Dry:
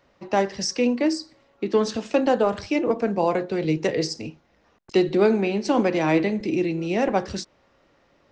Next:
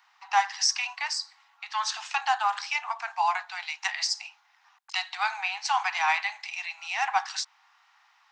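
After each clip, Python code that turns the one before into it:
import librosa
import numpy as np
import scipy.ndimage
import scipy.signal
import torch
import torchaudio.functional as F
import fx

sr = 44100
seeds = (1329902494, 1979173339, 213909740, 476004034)

y = scipy.signal.sosfilt(scipy.signal.butter(16, 770.0, 'highpass', fs=sr, output='sos'), x)
y = y * 10.0 ** (3.5 / 20.0)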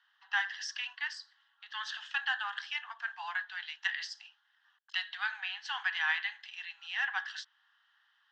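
y = fx.double_bandpass(x, sr, hz=2300.0, octaves=0.89)
y = fx.dynamic_eq(y, sr, hz=2200.0, q=1.8, threshold_db=-52.0, ratio=4.0, max_db=8)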